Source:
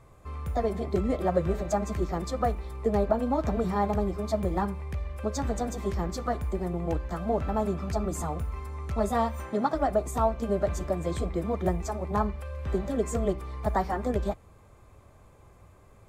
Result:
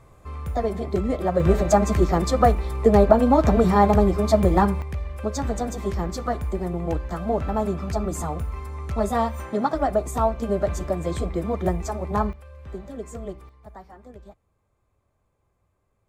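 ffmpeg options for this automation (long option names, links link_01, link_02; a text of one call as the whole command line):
ffmpeg -i in.wav -af "asetnsamples=nb_out_samples=441:pad=0,asendcmd='1.4 volume volume 10dB;4.82 volume volume 3.5dB;12.33 volume volume -7dB;13.49 volume volume -16.5dB',volume=3dB" out.wav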